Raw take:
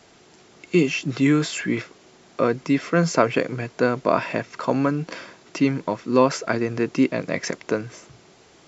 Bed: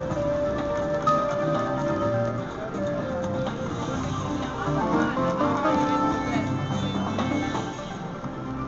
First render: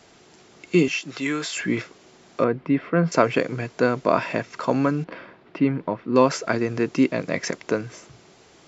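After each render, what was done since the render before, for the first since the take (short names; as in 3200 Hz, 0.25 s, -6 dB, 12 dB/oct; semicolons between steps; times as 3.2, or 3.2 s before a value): 0.88–1.57 HPF 760 Hz 6 dB/oct; 2.44–3.12 air absorption 440 m; 5.04–6.16 air absorption 390 m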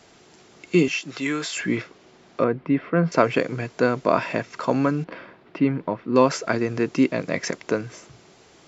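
1.77–3.18 air absorption 81 m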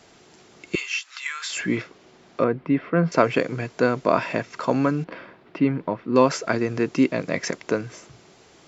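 0.75–1.5 HPF 1100 Hz 24 dB/oct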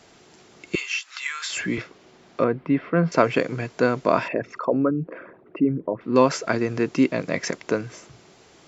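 0.89–1.78 three-band squash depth 40%; 4.28–6.01 formant sharpening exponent 2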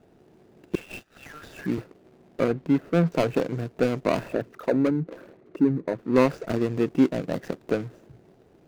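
median filter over 41 samples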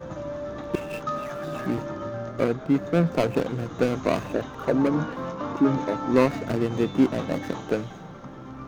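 add bed -8 dB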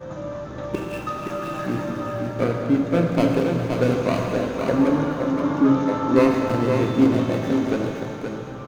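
on a send: echo 0.522 s -5.5 dB; on the sum: plate-style reverb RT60 2.4 s, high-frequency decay 1×, DRR 1.5 dB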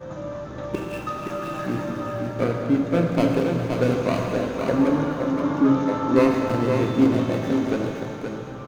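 gain -1 dB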